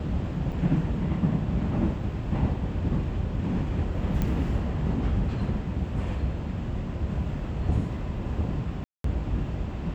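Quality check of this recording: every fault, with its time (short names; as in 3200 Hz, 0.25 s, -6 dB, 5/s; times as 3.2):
0.52 gap 4.7 ms
4.22 pop -15 dBFS
8.84–9.04 gap 0.203 s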